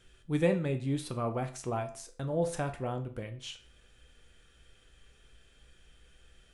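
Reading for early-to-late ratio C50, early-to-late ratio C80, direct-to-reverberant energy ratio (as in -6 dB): 13.5 dB, 17.5 dB, 5.5 dB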